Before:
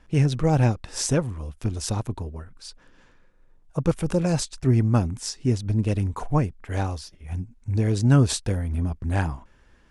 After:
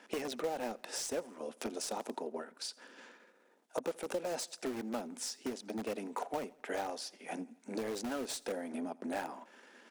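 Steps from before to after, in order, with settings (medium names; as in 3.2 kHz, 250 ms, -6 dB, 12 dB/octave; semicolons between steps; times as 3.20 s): partial rectifier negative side -3 dB; steep high-pass 230 Hz 48 dB/octave; band-stop 1.1 kHz, Q 8.3; in parallel at -7 dB: integer overflow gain 25.5 dB; on the sum: peaking EQ 300 Hz -6 dB 0.35 oct; compression 6:1, threshold -42 dBFS, peak gain reduction 19 dB; dynamic bell 590 Hz, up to +6 dB, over -57 dBFS, Q 1.1; on a send: feedback delay 84 ms, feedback 55%, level -23.5 dB; on the sum: trim +3 dB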